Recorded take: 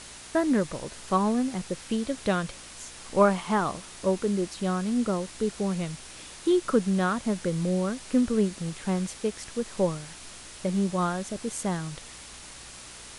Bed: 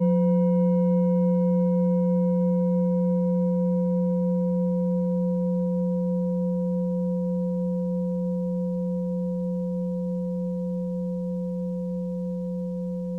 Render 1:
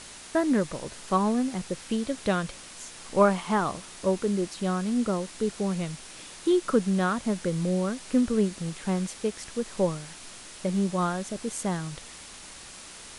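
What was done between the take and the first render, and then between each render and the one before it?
de-hum 60 Hz, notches 2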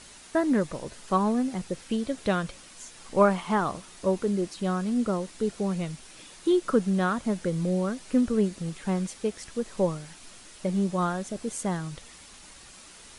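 denoiser 6 dB, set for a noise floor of -45 dBFS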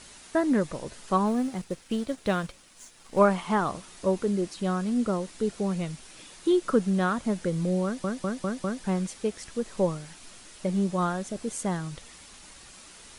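1.26–3.19 G.711 law mismatch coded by A; 7.84 stutter in place 0.20 s, 5 plays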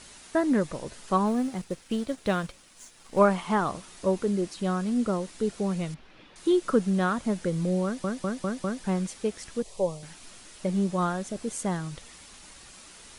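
5.94–6.36 air absorption 310 m; 9.62–10.03 fixed phaser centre 610 Hz, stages 4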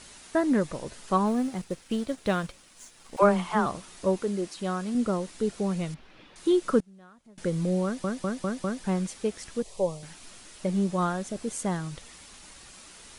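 3.16–3.66 dispersion lows, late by 63 ms, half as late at 460 Hz; 4.16–4.95 low shelf 210 Hz -7.5 dB; 6.8–7.38 flipped gate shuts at -29 dBFS, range -27 dB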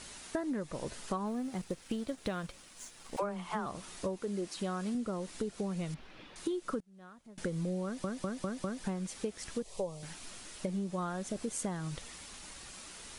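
compressor 16:1, threshold -32 dBFS, peak gain reduction 18.5 dB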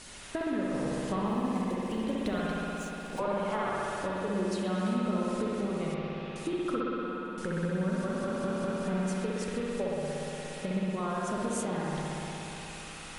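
band-limited delay 68 ms, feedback 75%, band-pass 1600 Hz, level -5.5 dB; spring tank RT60 3.7 s, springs 59 ms, chirp 70 ms, DRR -4.5 dB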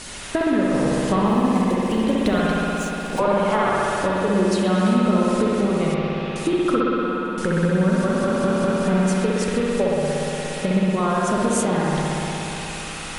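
gain +12 dB

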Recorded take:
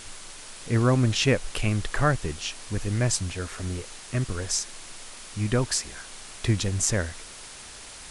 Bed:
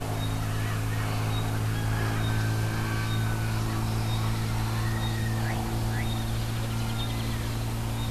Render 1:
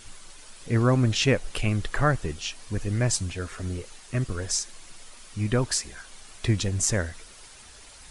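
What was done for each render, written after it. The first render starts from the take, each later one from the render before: denoiser 8 dB, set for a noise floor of -43 dBFS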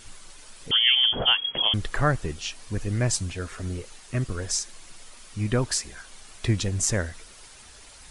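0.71–1.74 inverted band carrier 3300 Hz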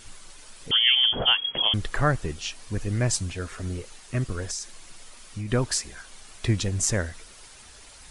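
4.46–5.52 compressor, threshold -28 dBFS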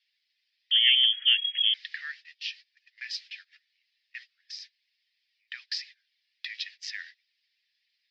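Chebyshev band-pass 1800–5100 Hz, order 4; gate -45 dBFS, range -23 dB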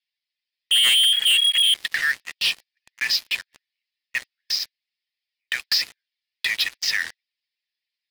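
sample leveller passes 5; limiter -14.5 dBFS, peak gain reduction 4 dB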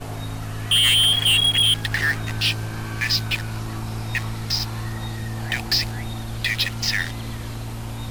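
add bed -1 dB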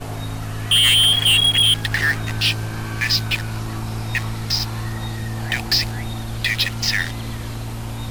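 gain +2.5 dB

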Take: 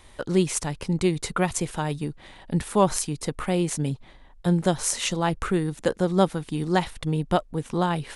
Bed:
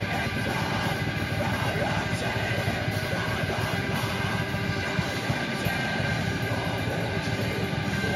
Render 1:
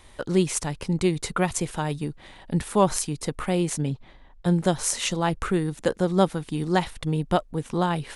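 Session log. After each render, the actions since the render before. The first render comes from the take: 3.81–4.46 air absorption 69 m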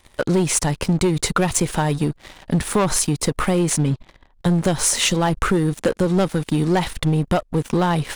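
sample leveller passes 3; compressor, threshold -15 dBFS, peak gain reduction 6 dB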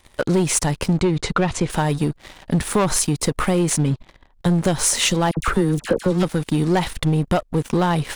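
1–1.7 air absorption 100 m; 5.31–6.23 dispersion lows, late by 58 ms, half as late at 1300 Hz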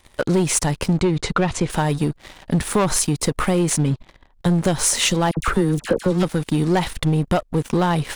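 nothing audible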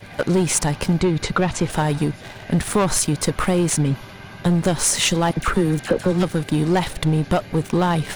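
add bed -11 dB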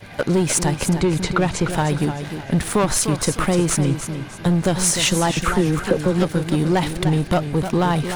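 warbling echo 0.303 s, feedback 31%, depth 107 cents, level -9 dB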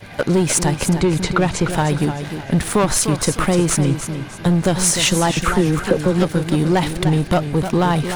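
gain +2 dB

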